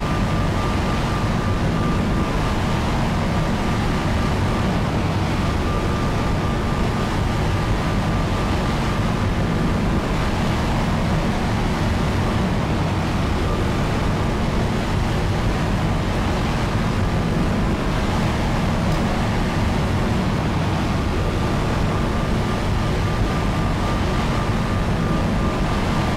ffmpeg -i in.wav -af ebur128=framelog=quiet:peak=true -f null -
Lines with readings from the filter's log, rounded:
Integrated loudness:
  I:         -21.2 LUFS
  Threshold: -31.2 LUFS
Loudness range:
  LRA:         0.4 LU
  Threshold: -41.2 LUFS
  LRA low:   -21.4 LUFS
  LRA high:  -21.0 LUFS
True peak:
  Peak:      -11.9 dBFS